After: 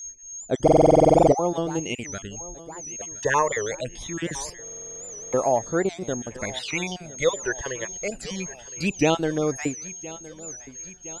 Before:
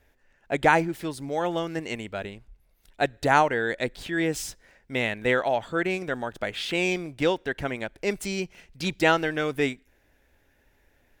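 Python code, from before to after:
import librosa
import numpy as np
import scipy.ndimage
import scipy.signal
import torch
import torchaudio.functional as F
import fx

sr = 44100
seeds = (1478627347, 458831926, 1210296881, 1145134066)

y = fx.spec_dropout(x, sr, seeds[0], share_pct=27)
y = scipy.signal.sosfilt(scipy.signal.butter(4, 11000.0, 'lowpass', fs=sr, output='sos'), y)
y = fx.spec_box(y, sr, start_s=2.82, length_s=0.28, low_hz=620.0, high_hz=8500.0, gain_db=-10)
y = y + 10.0 ** (-38.0 / 20.0) * np.sin(2.0 * np.pi * 6500.0 * np.arange(len(y)) / sr)
y = fx.phaser_stages(y, sr, stages=12, low_hz=230.0, high_hz=3200.0, hz=0.23, feedback_pct=35)
y = fx.echo_feedback(y, sr, ms=1015, feedback_pct=59, wet_db=-18.5)
y = fx.buffer_glitch(y, sr, at_s=(0.63, 4.63), block=2048, repeats=14)
y = fx.record_warp(y, sr, rpm=78.0, depth_cents=160.0)
y = y * librosa.db_to_amplitude(3.5)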